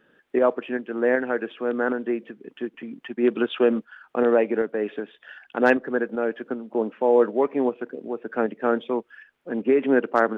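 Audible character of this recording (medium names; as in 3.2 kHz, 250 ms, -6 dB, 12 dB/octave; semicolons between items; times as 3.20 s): tremolo saw up 2.6 Hz, depth 35%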